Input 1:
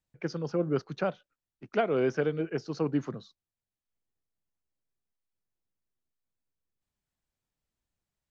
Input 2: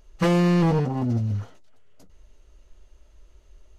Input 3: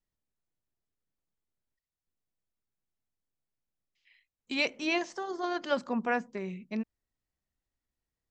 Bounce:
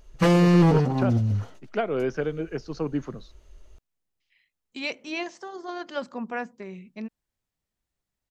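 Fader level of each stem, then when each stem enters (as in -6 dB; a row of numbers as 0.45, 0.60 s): +0.5, +1.5, -2.0 dB; 0.00, 0.00, 0.25 s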